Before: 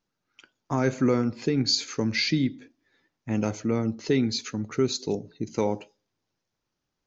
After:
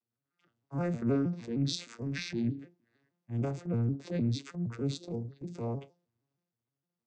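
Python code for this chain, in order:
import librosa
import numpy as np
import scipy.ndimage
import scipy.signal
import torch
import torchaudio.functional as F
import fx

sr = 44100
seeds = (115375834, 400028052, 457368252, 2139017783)

y = fx.vocoder_arp(x, sr, chord='minor triad', root=46, every_ms=155)
y = fx.transient(y, sr, attack_db=-8, sustain_db=6)
y = F.gain(torch.from_numpy(y), -5.0).numpy()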